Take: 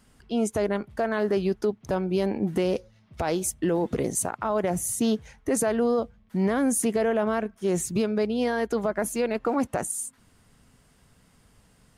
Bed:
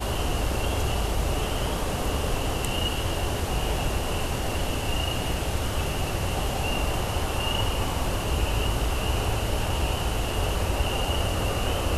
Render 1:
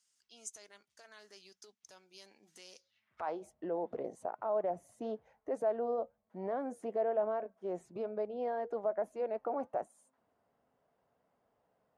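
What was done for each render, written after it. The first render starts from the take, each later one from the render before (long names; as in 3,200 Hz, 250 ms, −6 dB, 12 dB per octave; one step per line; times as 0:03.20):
flanger 1.1 Hz, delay 1.8 ms, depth 1.5 ms, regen −89%
band-pass filter sweep 6,300 Hz → 650 Hz, 0:02.76–0:03.37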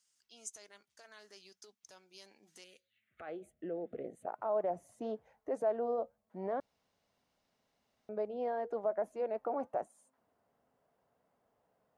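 0:02.64–0:04.27: phaser with its sweep stopped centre 2,300 Hz, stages 4
0:06.60–0:08.09: fill with room tone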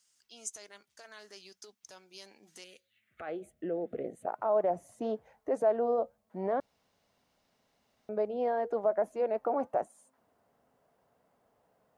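level +5.5 dB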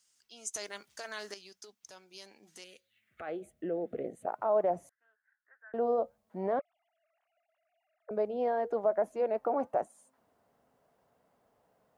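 0:00.54–0:01.34: clip gain +9.5 dB
0:04.89–0:05.74: flat-topped band-pass 1,600 Hz, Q 5.4
0:06.59–0:08.11: three sine waves on the formant tracks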